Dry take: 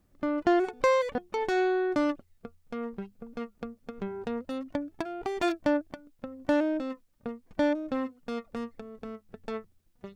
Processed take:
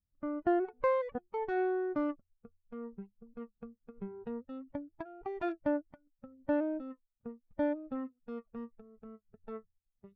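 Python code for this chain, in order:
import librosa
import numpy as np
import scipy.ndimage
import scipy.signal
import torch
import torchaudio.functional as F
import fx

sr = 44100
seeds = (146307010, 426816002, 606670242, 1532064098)

y = fx.bin_expand(x, sr, power=1.5)
y = scipy.signal.sosfilt(scipy.signal.butter(2, 1600.0, 'lowpass', fs=sr, output='sos'), y)
y = F.gain(torch.from_numpy(y), -4.5).numpy()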